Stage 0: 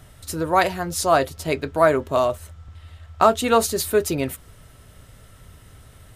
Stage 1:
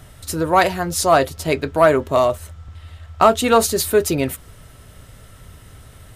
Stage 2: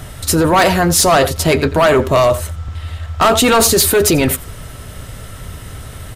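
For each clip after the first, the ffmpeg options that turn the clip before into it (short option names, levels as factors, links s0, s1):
-af "acontrast=31,volume=0.891"
-af "aecho=1:1:88:0.0891,apsyclip=8.91,volume=0.447"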